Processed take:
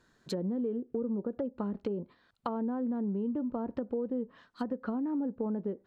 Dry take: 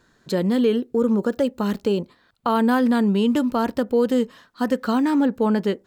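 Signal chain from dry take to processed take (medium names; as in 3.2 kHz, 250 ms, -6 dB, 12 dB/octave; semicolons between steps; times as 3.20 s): low-pass that closes with the level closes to 670 Hz, closed at -18 dBFS; compression 4:1, threshold -23 dBFS, peak gain reduction 7 dB; trim -7.5 dB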